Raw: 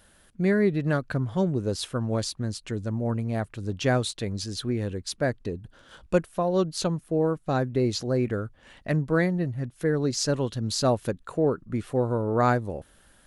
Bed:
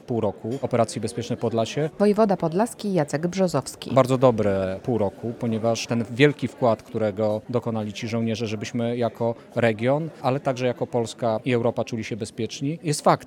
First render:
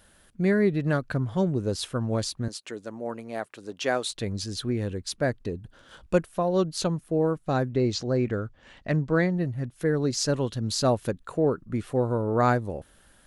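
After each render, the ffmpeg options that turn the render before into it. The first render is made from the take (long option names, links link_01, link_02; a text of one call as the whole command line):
ffmpeg -i in.wav -filter_complex "[0:a]asettb=1/sr,asplit=3[link_01][link_02][link_03];[link_01]atrim=end=2.484[link_04];[link_02]atrim=start=2.48:end=4.11,asetpts=PTS-STARTPTS,afade=type=in:duration=0.004:curve=qsin,afade=type=out:start_time=1.626:duration=0.004:curve=qsin,highpass=370[link_05];[link_03]atrim=start=4.106[link_06];[link_04][link_05]acrossfade=duration=0.004:curve1=hsin:curve2=qsin[link_07];[link_07][link_06]acrossfade=duration=0.004:curve1=qsin:curve2=hsin,asettb=1/sr,asplit=3[link_08][link_09][link_10];[link_08]atrim=end=7.744[link_11];[link_09]atrim=start=7.74:end=9.37,asetpts=PTS-STARTPTS,afade=type=in:duration=0.004:curve=qsin,afade=type=out:start_time=1.626:duration=0.004:curve=qsin,lowpass=frequency=7500:width=0.5412,lowpass=frequency=7500:width=1.3066[link_12];[link_10]atrim=start=9.366[link_13];[link_11][link_12]acrossfade=duration=0.004:curve1=hsin:curve2=qsin[link_14];[link_14][link_13]acrossfade=duration=0.004:curve1=qsin:curve2=hsin" out.wav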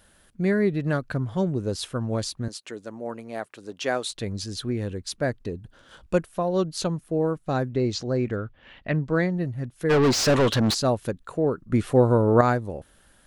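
ffmpeg -i in.wav -filter_complex "[0:a]asettb=1/sr,asplit=3[link_01][link_02][link_03];[link_01]atrim=end=8.364[link_04];[link_02]atrim=start=8.36:end=9.02,asetpts=PTS-STARTPTS,afade=type=in:duration=0.004:curve=qsin,afade=type=out:start_time=0.656:duration=0.004:curve=qsin,lowpass=frequency=3000:width_type=q:width=1.6[link_05];[link_03]atrim=start=9.016[link_06];[link_04][link_05]acrossfade=duration=0.004:curve1=hsin:curve2=qsin[link_07];[link_07][link_06]acrossfade=duration=0.004:curve1=qsin:curve2=hsin,asplit=3[link_08][link_09][link_10];[link_08]afade=type=out:start_time=9.89:duration=0.02[link_11];[link_09]asplit=2[link_12][link_13];[link_13]highpass=frequency=720:poles=1,volume=32dB,asoftclip=type=tanh:threshold=-11.5dB[link_14];[link_12][link_14]amix=inputs=2:normalize=0,lowpass=frequency=2600:poles=1,volume=-6dB,afade=type=in:start_time=9.89:duration=0.02,afade=type=out:start_time=10.73:duration=0.02[link_15];[link_10]afade=type=in:start_time=10.73:duration=0.02[link_16];[link_11][link_15][link_16]amix=inputs=3:normalize=0,asplit=3[link_17][link_18][link_19];[link_17]atrim=end=11.722[link_20];[link_18]atrim=start=11.718:end=12.412,asetpts=PTS-STARTPTS,volume=7dB[link_21];[link_19]atrim=start=12.408[link_22];[link_20][link_21]acrossfade=duration=0.004:curve1=hsin:curve2=hsin[link_23];[link_23][link_22]acrossfade=duration=0.004:curve1=hsin:curve2=hsin" out.wav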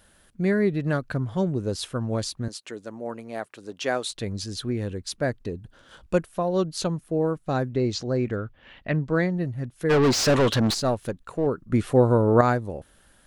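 ffmpeg -i in.wav -filter_complex "[0:a]asettb=1/sr,asplit=3[link_01][link_02][link_03];[link_01]atrim=end=10.674[link_04];[link_02]atrim=start=10.67:end=11.47,asetpts=PTS-STARTPTS,afade=type=in:duration=0.004:curve=qsin,afade=type=out:start_time=0.796:duration=0.004:curve=qsin,aeval=exprs='if(lt(val(0),0),0.708*val(0),val(0))':channel_layout=same[link_05];[link_03]atrim=start=11.466[link_06];[link_04][link_05]acrossfade=duration=0.004:curve1=hsin:curve2=qsin[link_07];[link_07][link_06]acrossfade=duration=0.004:curve1=qsin:curve2=hsin" out.wav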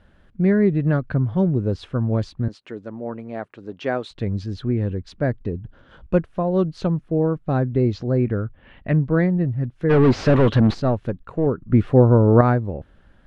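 ffmpeg -i in.wav -af "lowpass=2600,lowshelf=frequency=310:gain=9" out.wav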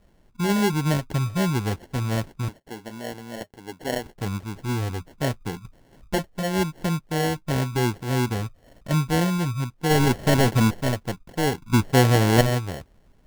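ffmpeg -i in.wav -af "flanger=delay=5.3:depth=3.2:regen=-57:speed=0.89:shape=triangular,acrusher=samples=36:mix=1:aa=0.000001" out.wav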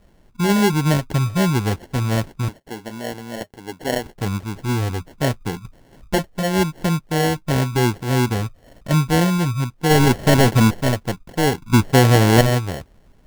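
ffmpeg -i in.wav -af "volume=5dB,alimiter=limit=-3dB:level=0:latency=1" out.wav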